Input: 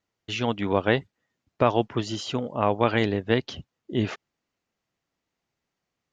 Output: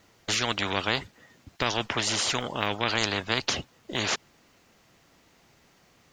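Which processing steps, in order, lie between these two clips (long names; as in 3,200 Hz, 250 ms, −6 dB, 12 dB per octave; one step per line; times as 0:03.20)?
every bin compressed towards the loudest bin 4 to 1
level −2 dB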